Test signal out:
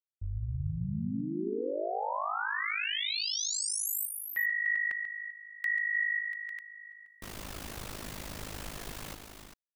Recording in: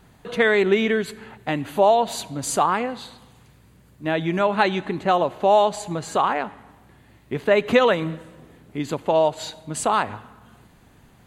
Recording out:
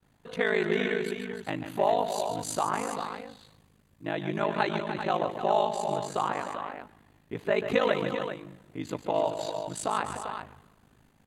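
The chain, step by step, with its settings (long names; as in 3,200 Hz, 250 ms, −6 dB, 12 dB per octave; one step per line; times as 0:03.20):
multi-tap delay 140/299/395 ms −9.5/−10/−8.5 dB
downward expander −48 dBFS
ring modulation 26 Hz
level −6 dB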